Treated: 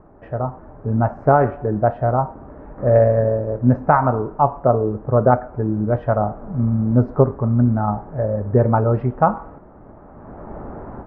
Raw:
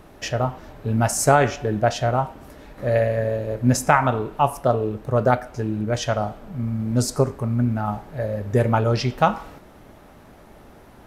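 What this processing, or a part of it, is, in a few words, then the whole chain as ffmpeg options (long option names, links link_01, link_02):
action camera in a waterproof case: -af "lowpass=frequency=1300:width=0.5412,lowpass=frequency=1300:width=1.3066,dynaudnorm=framelen=440:gausssize=3:maxgain=16dB,volume=-1dB" -ar 32000 -c:a aac -b:a 96k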